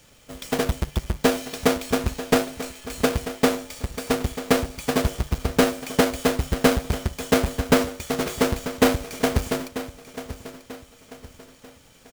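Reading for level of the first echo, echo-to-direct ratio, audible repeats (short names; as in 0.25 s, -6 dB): -13.5 dB, -13.0 dB, 3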